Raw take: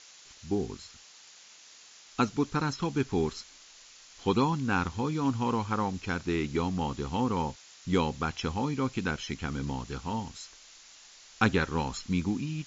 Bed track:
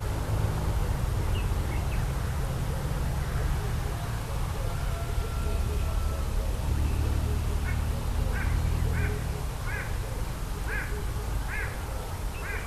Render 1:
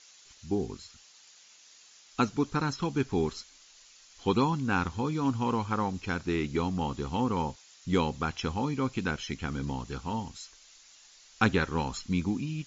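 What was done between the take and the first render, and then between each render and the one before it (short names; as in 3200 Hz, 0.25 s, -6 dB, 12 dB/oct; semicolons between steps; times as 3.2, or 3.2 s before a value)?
denoiser 6 dB, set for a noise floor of -54 dBFS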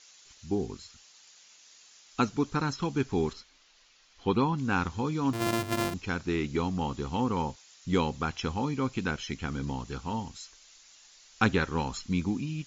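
3.33–4.58 air absorption 140 m; 5.33–5.94 sample sorter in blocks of 128 samples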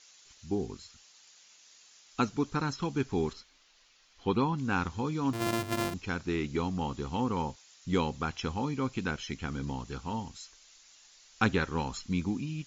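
gain -2 dB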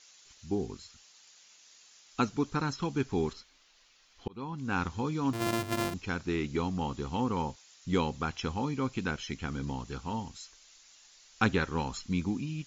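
4.28–4.83 fade in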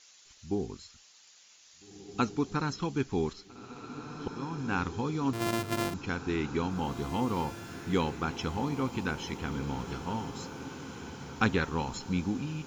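diffused feedback echo 1.766 s, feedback 55%, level -10 dB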